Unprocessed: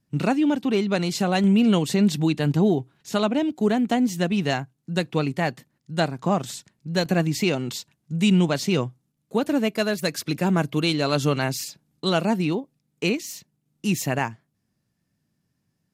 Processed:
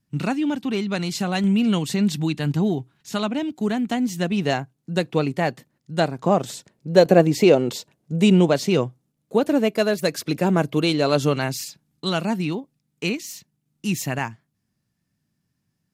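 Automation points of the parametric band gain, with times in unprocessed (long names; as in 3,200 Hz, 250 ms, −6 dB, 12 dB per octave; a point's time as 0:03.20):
parametric band 500 Hz 1.4 octaves
0:04.02 −5 dB
0:04.47 +4 dB
0:06.08 +4 dB
0:06.91 +14 dB
0:08.23 +14 dB
0:08.63 +5.5 dB
0:11.17 +5.5 dB
0:11.64 −4 dB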